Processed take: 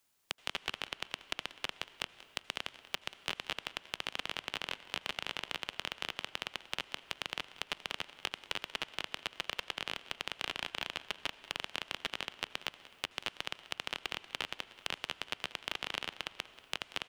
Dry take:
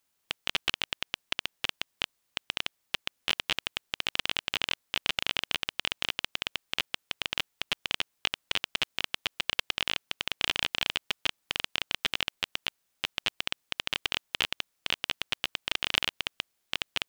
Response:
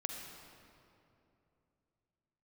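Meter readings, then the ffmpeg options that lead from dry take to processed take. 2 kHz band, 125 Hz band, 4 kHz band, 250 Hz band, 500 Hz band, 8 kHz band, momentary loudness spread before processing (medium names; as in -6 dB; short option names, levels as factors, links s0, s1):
-7.0 dB, -7.5 dB, -8.5 dB, -5.0 dB, -3.0 dB, -6.5 dB, 6 LU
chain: -filter_complex "[0:a]acrossover=split=190|1700[s0][s1][s2];[s0]acompressor=threshold=0.00112:ratio=4[s3];[s1]acompressor=threshold=0.01:ratio=4[s4];[s2]acompressor=threshold=0.01:ratio=4[s5];[s3][s4][s5]amix=inputs=3:normalize=0,aecho=1:1:186|372|558|744:0.126|0.0567|0.0255|0.0115,asplit=2[s6][s7];[1:a]atrim=start_sample=2205,asetrate=24696,aresample=44100[s8];[s7][s8]afir=irnorm=-1:irlink=0,volume=0.168[s9];[s6][s9]amix=inputs=2:normalize=0"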